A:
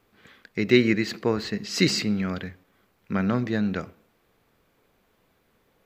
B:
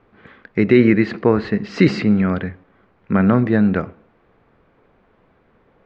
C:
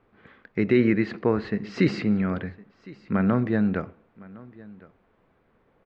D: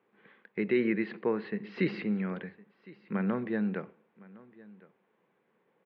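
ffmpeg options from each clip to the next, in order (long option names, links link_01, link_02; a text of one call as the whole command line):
ffmpeg -i in.wav -af "lowpass=1800,alimiter=level_in=11dB:limit=-1dB:release=50:level=0:latency=1,volume=-1dB" out.wav
ffmpeg -i in.wav -af "aecho=1:1:1060:0.0794,volume=-7.5dB" out.wav
ffmpeg -i in.wav -af "highpass=frequency=180:width=0.5412,highpass=frequency=180:width=1.3066,equalizer=frequency=270:width_type=q:width=4:gain=-9,equalizer=frequency=660:width_type=q:width=4:gain=-7,equalizer=frequency=1300:width_type=q:width=4:gain=-6,lowpass=frequency=3700:width=0.5412,lowpass=frequency=3700:width=1.3066,volume=-4.5dB" out.wav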